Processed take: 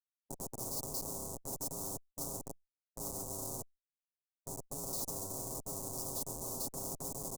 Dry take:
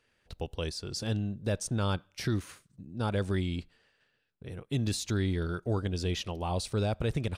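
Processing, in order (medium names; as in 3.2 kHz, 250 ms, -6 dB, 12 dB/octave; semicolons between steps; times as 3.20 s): 1.03–3.56 s: partial rectifier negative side -7 dB; ring modulator 290 Hz; peaking EQ 600 Hz -5 dB 0.35 oct; Schmitt trigger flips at -40 dBFS; elliptic band-stop 580–7400 Hz, stop band 80 dB; peak limiter -38 dBFS, peak gain reduction 9 dB; treble shelf 6.7 kHz -10 dB; comb 7.4 ms, depth 89%; spectrum-flattening compressor 4:1; trim +9 dB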